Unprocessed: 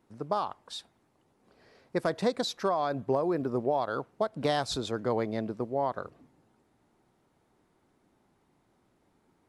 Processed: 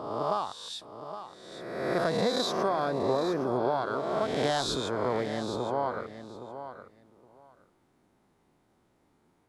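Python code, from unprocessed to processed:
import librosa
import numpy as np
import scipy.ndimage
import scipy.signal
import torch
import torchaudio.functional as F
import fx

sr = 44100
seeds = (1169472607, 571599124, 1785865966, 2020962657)

p1 = fx.spec_swells(x, sr, rise_s=1.32)
p2 = p1 + fx.echo_feedback(p1, sr, ms=816, feedback_pct=16, wet_db=-11, dry=0)
y = p2 * librosa.db_to_amplitude(-2.5)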